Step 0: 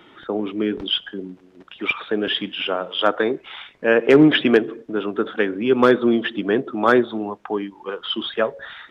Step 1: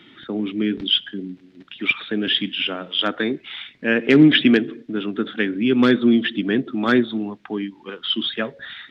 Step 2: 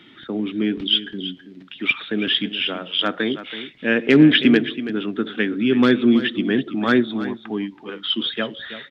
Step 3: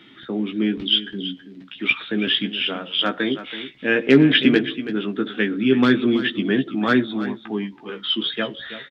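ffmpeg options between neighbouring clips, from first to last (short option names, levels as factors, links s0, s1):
-af "equalizer=f=125:t=o:w=1:g=7,equalizer=f=250:t=o:w=1:g=10,equalizer=f=500:t=o:w=1:g=-4,equalizer=f=1000:t=o:w=1:g=-5,equalizer=f=2000:t=o:w=1:g=7,equalizer=f=4000:t=o:w=1:g=10,volume=0.531"
-af "aecho=1:1:327:0.224"
-filter_complex "[0:a]asplit=2[s0][s1];[s1]adelay=15,volume=0.501[s2];[s0][s2]amix=inputs=2:normalize=0,volume=0.891"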